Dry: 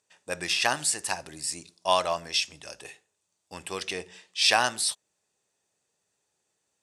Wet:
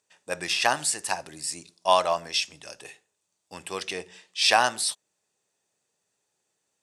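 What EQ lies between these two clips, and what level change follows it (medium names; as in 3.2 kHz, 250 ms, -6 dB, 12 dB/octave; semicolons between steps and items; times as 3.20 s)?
high-pass 94 Hz; dynamic bell 810 Hz, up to +4 dB, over -36 dBFS, Q 0.86; 0.0 dB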